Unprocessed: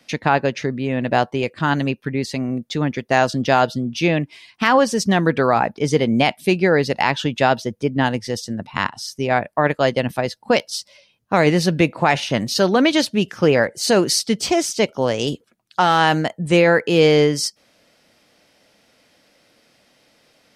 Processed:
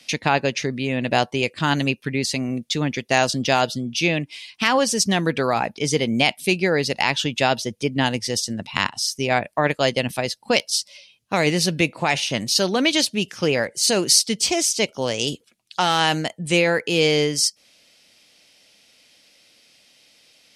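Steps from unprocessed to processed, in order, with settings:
flat-topped bell 5,100 Hz +12 dB 2.7 octaves
in parallel at 0 dB: speech leveller 2 s
on the sum: dynamic equaliser 3,300 Hz, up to −5 dB, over −20 dBFS, Q 0.82
level −10.5 dB

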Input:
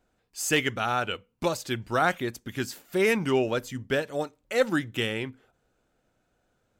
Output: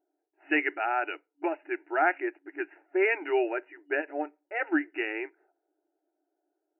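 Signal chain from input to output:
phaser with its sweep stopped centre 750 Hz, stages 8
low-pass that shuts in the quiet parts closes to 520 Hz, open at −24.5 dBFS
brick-wall band-pass 280–2,900 Hz
level +1.5 dB

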